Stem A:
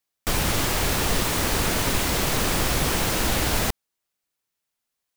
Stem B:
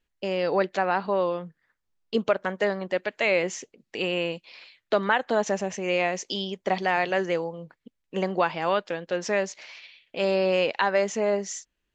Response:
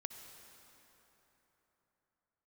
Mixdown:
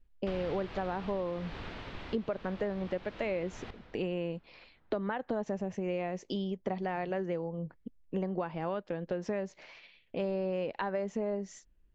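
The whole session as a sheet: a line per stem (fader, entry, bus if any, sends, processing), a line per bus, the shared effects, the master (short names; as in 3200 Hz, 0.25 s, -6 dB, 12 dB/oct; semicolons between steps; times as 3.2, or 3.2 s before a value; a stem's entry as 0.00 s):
-8.0 dB, 0.00 s, send -13.5 dB, LPF 3700 Hz 24 dB/oct; auto duck -18 dB, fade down 1.95 s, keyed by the second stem
-3.5 dB, 0.00 s, no send, tilt -4 dB/oct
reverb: on, RT60 3.9 s, pre-delay 54 ms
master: compressor 4:1, threshold -32 dBFS, peak gain reduction 13 dB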